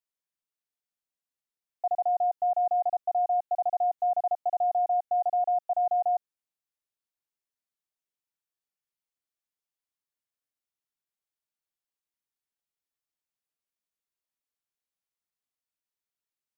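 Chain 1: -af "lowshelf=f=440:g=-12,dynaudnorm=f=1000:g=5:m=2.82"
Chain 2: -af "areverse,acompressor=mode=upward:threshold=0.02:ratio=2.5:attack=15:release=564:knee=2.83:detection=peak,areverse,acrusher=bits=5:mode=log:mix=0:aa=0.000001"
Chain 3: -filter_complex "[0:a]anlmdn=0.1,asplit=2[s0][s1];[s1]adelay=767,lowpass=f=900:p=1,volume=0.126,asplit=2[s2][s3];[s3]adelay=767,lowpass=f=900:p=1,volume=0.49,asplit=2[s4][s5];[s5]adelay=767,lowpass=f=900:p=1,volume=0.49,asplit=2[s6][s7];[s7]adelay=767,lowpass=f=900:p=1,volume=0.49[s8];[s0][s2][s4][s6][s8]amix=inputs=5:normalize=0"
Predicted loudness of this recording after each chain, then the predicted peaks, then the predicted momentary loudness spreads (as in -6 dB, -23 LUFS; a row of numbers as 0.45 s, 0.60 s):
-22.5 LUFS, -27.5 LUFS, -27.5 LUFS; -15.5 dBFS, -21.0 dBFS, -21.0 dBFS; 6 LU, 3 LU, 5 LU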